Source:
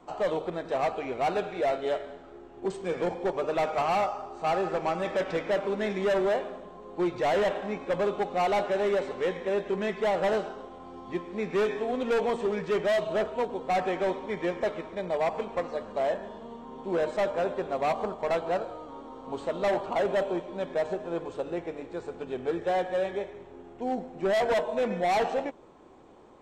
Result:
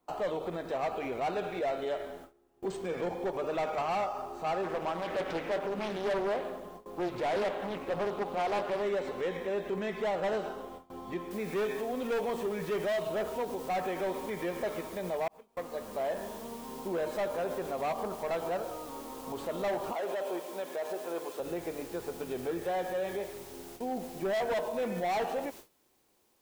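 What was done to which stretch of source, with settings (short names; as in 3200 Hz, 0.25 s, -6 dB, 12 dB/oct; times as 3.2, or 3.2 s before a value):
4.63–8.82 Doppler distortion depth 0.61 ms
11.31 noise floor step -66 dB -52 dB
15.28–16.05 fade in
19.93–21.4 HPF 370 Hz
whole clip: gate with hold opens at -35 dBFS; limiter -27 dBFS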